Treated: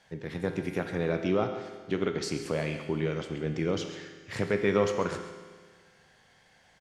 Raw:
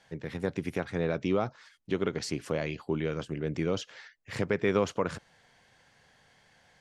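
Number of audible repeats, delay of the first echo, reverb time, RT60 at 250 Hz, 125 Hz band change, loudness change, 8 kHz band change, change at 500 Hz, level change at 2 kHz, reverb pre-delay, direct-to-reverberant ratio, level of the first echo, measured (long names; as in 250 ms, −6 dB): 1, 134 ms, 1.6 s, 1.6 s, +1.0 dB, +1.0 dB, +1.0 dB, +1.5 dB, +1.5 dB, 5 ms, 5.0 dB, −13.0 dB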